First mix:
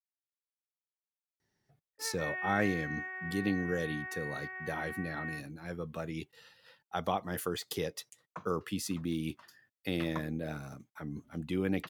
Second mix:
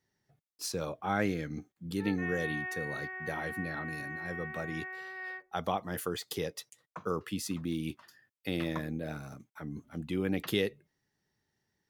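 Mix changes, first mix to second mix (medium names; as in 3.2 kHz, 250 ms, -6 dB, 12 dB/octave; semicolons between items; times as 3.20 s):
speech: entry -1.40 s; background: add bass shelf 300 Hz +10 dB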